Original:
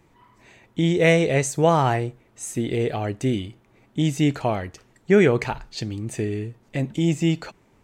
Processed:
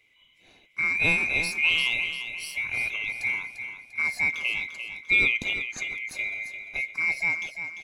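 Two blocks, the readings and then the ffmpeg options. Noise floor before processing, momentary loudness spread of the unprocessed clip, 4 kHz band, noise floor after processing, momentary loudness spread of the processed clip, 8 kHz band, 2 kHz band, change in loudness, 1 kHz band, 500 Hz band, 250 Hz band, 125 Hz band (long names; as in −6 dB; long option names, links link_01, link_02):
−59 dBFS, 14 LU, +3.0 dB, −61 dBFS, 12 LU, −8.0 dB, +8.0 dB, −2.5 dB, −16.0 dB, −22.5 dB, −21.5 dB, −21.5 dB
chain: -filter_complex "[0:a]afftfilt=real='real(if(lt(b,920),b+92*(1-2*mod(floor(b/92),2)),b),0)':imag='imag(if(lt(b,920),b+92*(1-2*mod(floor(b/92),2)),b),0)':win_size=2048:overlap=0.75,asplit=2[link_01][link_02];[link_02]aecho=0:1:346|692|1038|1384|1730:0.355|0.149|0.0626|0.0263|0.011[link_03];[link_01][link_03]amix=inputs=2:normalize=0,volume=-6dB"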